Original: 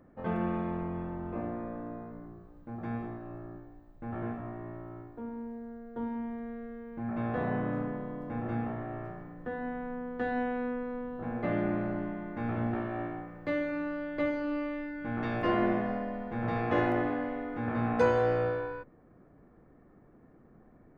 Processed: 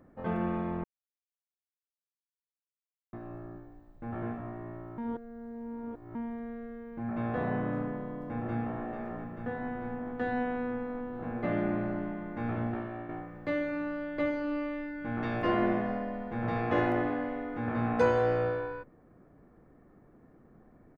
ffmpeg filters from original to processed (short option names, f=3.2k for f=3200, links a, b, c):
-filter_complex "[0:a]asplit=2[a][b];[b]afade=t=in:st=8.24:d=0.01,afade=t=out:st=8.8:d=0.01,aecho=0:1:440|880|1320|1760|2200|2640|3080|3520|3960|4400|4840|5280:0.473151|0.378521|0.302817|0.242253|0.193803|0.155042|0.124034|0.099227|0.0793816|0.0635053|0.0508042|0.0406434[c];[a][c]amix=inputs=2:normalize=0,asplit=6[d][e][f][g][h][i];[d]atrim=end=0.84,asetpts=PTS-STARTPTS,afade=t=out:st=0.836:d=0.004:c=hsin[j];[e]atrim=start=0.84:end=3.13,asetpts=PTS-STARTPTS,volume=0[k];[f]atrim=start=3.13:end=4.982,asetpts=PTS-STARTPTS,afade=t=in:d=0.004:c=hsin[l];[g]atrim=start=4.978:end=6.152,asetpts=PTS-STARTPTS,areverse[m];[h]atrim=start=6.148:end=13.09,asetpts=PTS-STARTPTS,afade=t=out:st=6.372:d=0.57:silence=0.446684[n];[i]atrim=start=13.09,asetpts=PTS-STARTPTS,afade=t=in:d=0.004:c=hsin:silence=0.446684[o];[j][k][l]concat=n=3:v=0:a=1[p];[p][m]acrossfade=d=0.004:c1=hsin:c2=hsin[q];[n][o]concat=n=2:v=0:a=1[r];[q][r]acrossfade=d=0.004:c1=hsin:c2=hsin"